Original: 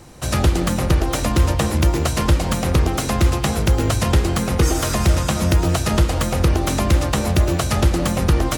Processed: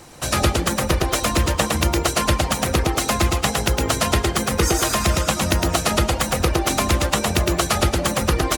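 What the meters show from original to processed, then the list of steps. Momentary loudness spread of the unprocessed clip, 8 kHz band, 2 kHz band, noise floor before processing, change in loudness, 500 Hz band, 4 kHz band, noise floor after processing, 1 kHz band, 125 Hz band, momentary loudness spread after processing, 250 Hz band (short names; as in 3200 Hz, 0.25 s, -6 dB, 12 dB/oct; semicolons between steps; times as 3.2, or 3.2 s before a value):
2 LU, +3.5 dB, +3.5 dB, -24 dBFS, -1.0 dB, +0.5 dB, +4.0 dB, -28 dBFS, +2.5 dB, -5.0 dB, 2 LU, -2.5 dB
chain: reverb removal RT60 0.98 s; low shelf 290 Hz -9.5 dB; feedback echo 0.11 s, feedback 31%, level -3.5 dB; gain +3.5 dB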